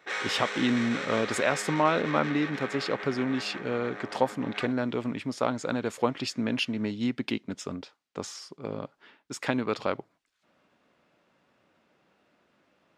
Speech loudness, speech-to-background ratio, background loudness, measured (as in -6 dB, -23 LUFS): -30.0 LUFS, 6.0 dB, -36.0 LUFS